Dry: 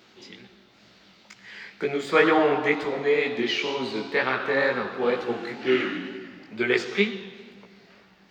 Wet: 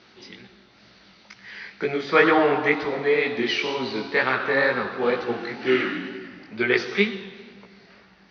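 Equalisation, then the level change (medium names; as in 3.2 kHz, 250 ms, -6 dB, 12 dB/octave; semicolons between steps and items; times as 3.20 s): rippled Chebyshev low-pass 6.1 kHz, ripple 3 dB; bass shelf 92 Hz +6.5 dB; +3.5 dB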